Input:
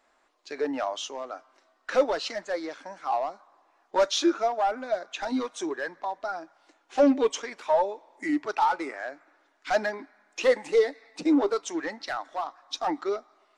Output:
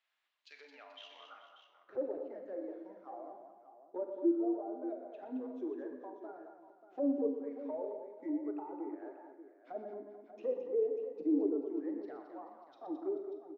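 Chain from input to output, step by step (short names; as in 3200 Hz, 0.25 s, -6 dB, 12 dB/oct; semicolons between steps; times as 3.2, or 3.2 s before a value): treble ducked by the level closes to 730 Hz, closed at -23.5 dBFS; 0.99–1.96 ring modulator 32 Hz -> 120 Hz; band-pass sweep 3000 Hz -> 360 Hz, 0.97–1.91; on a send: tapped delay 0.121/0.218/0.434/0.588 s -9.5/-8/-15.5/-12 dB; on the sum: Schroeder reverb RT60 0.75 s, combs from 32 ms, DRR 7 dB; gain -7 dB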